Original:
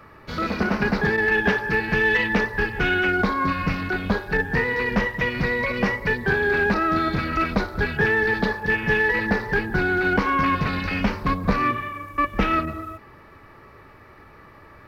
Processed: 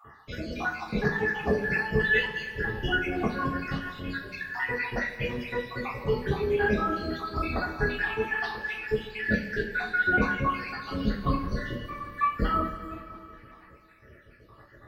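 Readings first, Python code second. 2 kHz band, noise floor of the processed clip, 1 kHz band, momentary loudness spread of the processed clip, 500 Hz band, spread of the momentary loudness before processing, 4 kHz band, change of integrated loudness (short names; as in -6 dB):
-7.0 dB, -54 dBFS, -7.0 dB, 11 LU, -5.5 dB, 6 LU, -5.5 dB, -7.0 dB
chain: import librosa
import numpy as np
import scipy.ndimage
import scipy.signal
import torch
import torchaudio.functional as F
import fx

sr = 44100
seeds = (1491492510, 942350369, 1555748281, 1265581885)

y = fx.spec_dropout(x, sr, seeds[0], share_pct=74)
y = fx.rev_double_slope(y, sr, seeds[1], early_s=0.34, late_s=2.9, knee_db=-17, drr_db=-7.0)
y = F.gain(torch.from_numpy(y), -8.5).numpy()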